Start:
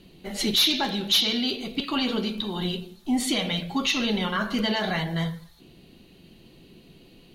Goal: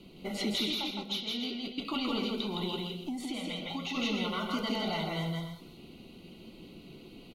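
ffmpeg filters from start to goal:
ffmpeg -i in.wav -filter_complex "[0:a]acrossover=split=90|4400[link_01][link_02][link_03];[link_01]acompressor=threshold=-52dB:ratio=4[link_04];[link_02]acompressor=threshold=-33dB:ratio=4[link_05];[link_03]acompressor=threshold=-44dB:ratio=4[link_06];[link_04][link_05][link_06]amix=inputs=3:normalize=0,equalizer=frequency=230:width=2.1:gain=3.5,asettb=1/sr,asplit=3[link_07][link_08][link_09];[link_07]atrim=end=0.744[link_10];[link_08]atrim=start=0.74:end=1.85,asetpts=PTS-STARTPTS,afade=type=in:duration=0.004:curve=qsin,afade=type=out:start_time=1.106:duration=0.004:curve=qsin,agate=range=-33dB:threshold=-27dB:ratio=3:detection=peak[link_11];[link_09]atrim=start=1.846[link_12];[link_10][link_11]acrossfade=duration=0.004:curve1=hsin:curve2=qsin[link_13];[link_13][link_12]acrossfade=duration=0.004:curve1=qsin:curve2=hsin,aecho=1:1:163.3|288.6:0.794|0.316,asplit=3[link_14][link_15][link_16];[link_14]afade=type=out:start_time=2.96:duration=0.02[link_17];[link_15]acompressor=threshold=-34dB:ratio=2.5,afade=type=in:start_time=2.96:duration=0.02,afade=type=out:start_time=3.94:duration=0.02[link_18];[link_16]afade=type=in:start_time=3.94:duration=0.02[link_19];[link_17][link_18][link_19]amix=inputs=3:normalize=0,asuperstop=centerf=1700:order=20:qfactor=4.2,bass=frequency=250:gain=-4,treble=frequency=4000:gain=-5" out.wav

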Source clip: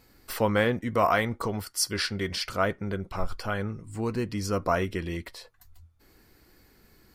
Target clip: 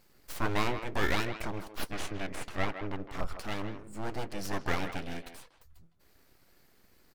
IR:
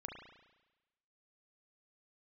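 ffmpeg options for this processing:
-filter_complex "[0:a]aeval=exprs='abs(val(0))':channel_layout=same,asettb=1/sr,asplit=3[link_01][link_02][link_03];[link_01]atrim=end=1.584[link_04];[link_02]atrim=start=1.58:end=3.1,asetpts=PTS-STARTPTS,afade=type=in:duration=0.004:curve=qsin,afade=type=out:start_time=1.516:duration=0.004:curve=qsin,aemphasis=mode=reproduction:type=cd[link_05];[link_03]atrim=start=3.096[link_06];[link_04][link_05]acrossfade=duration=0.004:curve1=hsin:curve2=qsin[link_07];[link_07][link_06]acrossfade=duration=0.004:curve1=qsin:curve2=hsin,asplit=2[link_08][link_09];[link_09]adelay=160,highpass=300,lowpass=3400,asoftclip=type=hard:threshold=-18.5dB,volume=-9dB[link_10];[link_08][link_10]amix=inputs=2:normalize=0,volume=-3.5dB"

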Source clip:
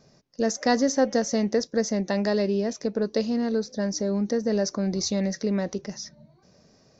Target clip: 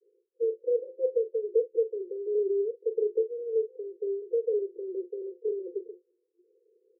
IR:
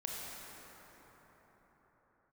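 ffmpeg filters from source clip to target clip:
-af "asuperpass=centerf=420:order=20:qfactor=2.4,aecho=1:1:31|45:0.188|0.224"

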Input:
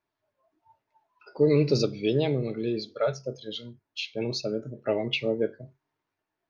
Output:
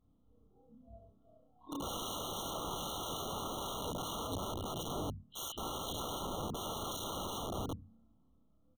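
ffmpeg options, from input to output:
ffmpeg -i in.wav -filter_complex "[0:a]afftfilt=real='re':imag='-im':win_size=2048:overlap=0.75,bandreject=frequency=50:width_type=h:width=6,bandreject=frequency=100:width_type=h:width=6,bandreject=frequency=150:width_type=h:width=6,bandreject=frequency=200:width_type=h:width=6,bandreject=frequency=250:width_type=h:width=6,bandreject=frequency=300:width_type=h:width=6,bandreject=frequency=350:width_type=h:width=6,bandreject=frequency=400:width_type=h:width=6,asetrate=32667,aresample=44100,acrossover=split=240|2300[link_01][link_02][link_03];[link_01]aeval=exprs='0.0841*sin(PI/2*8.91*val(0)/0.0841)':channel_layout=same[link_04];[link_04][link_02][link_03]amix=inputs=3:normalize=0,acrossover=split=390[link_05][link_06];[link_06]acompressor=threshold=-27dB:ratio=3[link_07];[link_05][link_07]amix=inputs=2:normalize=0,highshelf=frequency=3100:gain=-6.5,acompressor=threshold=-34dB:ratio=8,asplit=2[link_08][link_09];[link_09]aecho=0:1:35|71:0.501|0.562[link_10];[link_08][link_10]amix=inputs=2:normalize=0,aeval=exprs='(mod(70.8*val(0)+1,2)-1)/70.8':channel_layout=same,afftfilt=real='re*eq(mod(floor(b*sr/1024/1400),2),0)':imag='im*eq(mod(floor(b*sr/1024/1400),2),0)':win_size=1024:overlap=0.75,volume=3.5dB" out.wav

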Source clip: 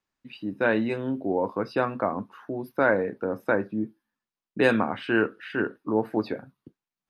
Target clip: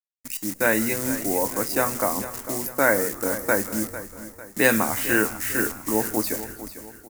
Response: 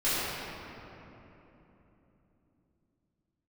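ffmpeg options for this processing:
-filter_complex "[0:a]acrusher=bits=8:dc=4:mix=0:aa=0.000001,asplit=2[link_01][link_02];[link_02]asplit=6[link_03][link_04][link_05][link_06][link_07][link_08];[link_03]adelay=164,afreqshift=-120,volume=-19dB[link_09];[link_04]adelay=328,afreqshift=-240,volume=-23.2dB[link_10];[link_05]adelay=492,afreqshift=-360,volume=-27.3dB[link_11];[link_06]adelay=656,afreqshift=-480,volume=-31.5dB[link_12];[link_07]adelay=820,afreqshift=-600,volume=-35.6dB[link_13];[link_08]adelay=984,afreqshift=-720,volume=-39.8dB[link_14];[link_09][link_10][link_11][link_12][link_13][link_14]amix=inputs=6:normalize=0[link_15];[link_01][link_15]amix=inputs=2:normalize=0,aexciter=amount=10.8:drive=3.5:freq=5500,equalizer=frequency=160:width_type=o:width=0.33:gain=-7,equalizer=frequency=400:width_type=o:width=0.33:gain=-4,equalizer=frequency=2000:width_type=o:width=0.33:gain=9,equalizer=frequency=4000:width_type=o:width=0.33:gain=4,asplit=2[link_16][link_17];[link_17]aecho=0:1:449|898|1347|1796:0.211|0.0951|0.0428|0.0193[link_18];[link_16][link_18]amix=inputs=2:normalize=0,volume=1.5dB"

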